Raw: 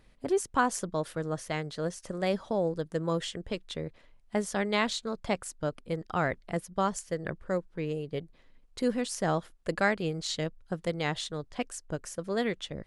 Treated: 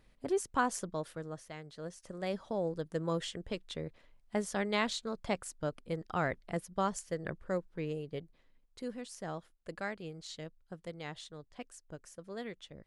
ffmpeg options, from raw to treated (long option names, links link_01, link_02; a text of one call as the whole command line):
ffmpeg -i in.wav -af "volume=5.5dB,afade=type=out:start_time=0.75:duration=0.8:silence=0.334965,afade=type=in:start_time=1.55:duration=1.42:silence=0.316228,afade=type=out:start_time=7.82:duration=1.05:silence=0.375837" out.wav